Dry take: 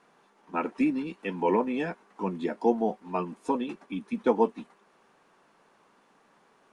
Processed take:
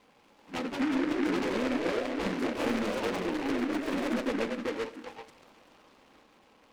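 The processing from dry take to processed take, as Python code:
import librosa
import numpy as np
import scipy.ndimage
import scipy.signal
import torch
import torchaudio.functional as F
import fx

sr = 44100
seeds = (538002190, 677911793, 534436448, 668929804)

y = scipy.signal.medfilt(x, 15)
y = fx.env_lowpass_down(y, sr, base_hz=480.0, full_db=-24.5)
y = fx.echo_stepped(y, sr, ms=388, hz=430.0, octaves=1.4, feedback_pct=70, wet_db=-0.5)
y = 10.0 ** (-30.5 / 20.0) * np.tanh(y / 10.0 ** (-30.5 / 20.0))
y = y + 0.54 * np.pad(y, (int(3.8 * sr / 1000.0), 0))[:len(y)]
y = fx.rev_schroeder(y, sr, rt60_s=1.1, comb_ms=26, drr_db=13.0)
y = fx.echo_pitch(y, sr, ms=238, semitones=2, count=3, db_per_echo=-3.0)
y = fx.high_shelf(y, sr, hz=4900.0, db=11.5, at=(2.21, 4.27))
y = fx.noise_mod_delay(y, sr, seeds[0], noise_hz=1400.0, depth_ms=0.13)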